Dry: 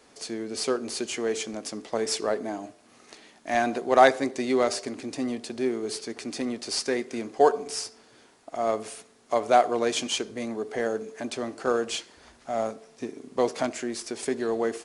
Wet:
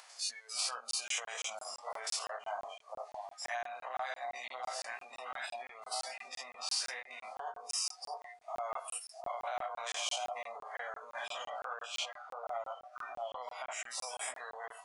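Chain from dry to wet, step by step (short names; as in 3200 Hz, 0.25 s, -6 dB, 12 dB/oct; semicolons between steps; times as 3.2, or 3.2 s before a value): stepped spectrum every 0.1 s; chorus 0.23 Hz, delay 15.5 ms, depth 5.5 ms; echo with dull and thin repeats by turns 0.656 s, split 1000 Hz, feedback 50%, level -8 dB; spectral noise reduction 20 dB; upward compressor, threshold -50 dBFS; 11.5–13.72 high shelf 5200 Hz -11.5 dB; compressor 12:1, threshold -37 dBFS, peak gain reduction 22 dB; limiter -33.5 dBFS, peak gain reduction 8.5 dB; inverse Chebyshev high-pass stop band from 370 Hz, stop band 40 dB; crackling interface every 0.17 s, samples 1024, zero, from 0.91; gain +9.5 dB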